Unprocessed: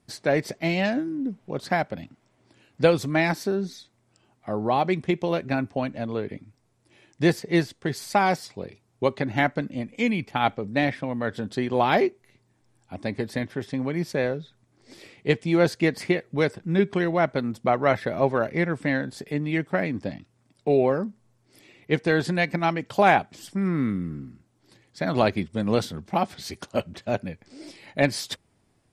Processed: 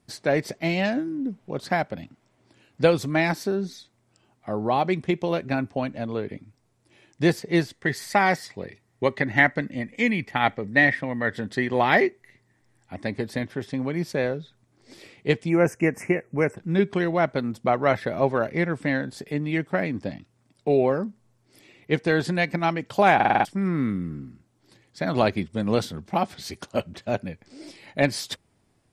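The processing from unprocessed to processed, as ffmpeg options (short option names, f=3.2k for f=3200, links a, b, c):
-filter_complex "[0:a]asettb=1/sr,asplit=3[a][b][c];[a]atrim=end=7.724[d];[b]atrim=start=7.72:end=13.07,asetpts=PTS-STARTPTS,afade=t=in:d=0.004:c=qsin,afade=t=out:st=5.346:d=0.004:c=qsin,equalizer=f=1.9k:w=6:g=14.5[e];[c]atrim=start=13.066[f];[d][e]acrossfade=d=0.004:c1=hsin:c2=qsin[g];[g][f]acrossfade=d=0.004:c1=qsin:c2=hsin,asplit=3[h][i][j];[h]afade=t=out:st=15.48:d=0.02[k];[i]asuperstop=centerf=3900:order=8:qfactor=1.3,afade=t=in:st=15.48:d=0.02,afade=t=out:st=16.56:d=0.02[l];[j]afade=t=in:st=16.56:d=0.02[m];[k][l][m]amix=inputs=3:normalize=0,asplit=7[n][o][p][q][r][s][t];[n]atrim=end=23.202[u];[o]atrim=start=23.148:end=23.202[v];[p]atrim=start=23.148:end=23.202[w];[q]atrim=start=23.148:end=23.202[x];[r]atrim=start=23.148:end=23.202[y];[s]atrim=start=23.148:end=23.202[z];[t]atrim=start=23.448[aa];[u][v]acrossfade=d=0.004:c1=hsin:c2=hsin[ab];[ab][w]acrossfade=d=0.004:c1=hsin:c2=hsin[ac];[ac][x]acrossfade=d=0.004:c1=hsin:c2=hsin[ad];[ad][y]acrossfade=d=0.004:c1=hsin:c2=hsin[ae];[ae][z]acrossfade=d=0.004:c1=hsin:c2=hsin[af];[af][aa]acrossfade=d=0.004:c1=hsin:c2=hsin"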